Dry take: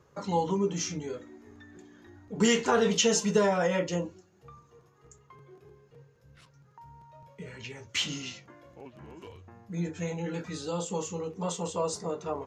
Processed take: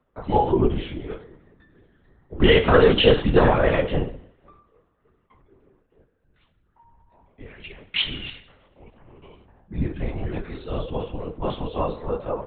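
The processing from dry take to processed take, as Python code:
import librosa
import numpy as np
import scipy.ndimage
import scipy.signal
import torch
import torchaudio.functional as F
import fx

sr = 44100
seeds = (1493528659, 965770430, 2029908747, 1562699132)

y = fx.rev_double_slope(x, sr, seeds[0], early_s=0.74, late_s=2.7, knee_db=-26, drr_db=7.5)
y = fx.lpc_vocoder(y, sr, seeds[1], excitation='whisper', order=10)
y = fx.band_widen(y, sr, depth_pct=40)
y = y * librosa.db_to_amplitude(5.0)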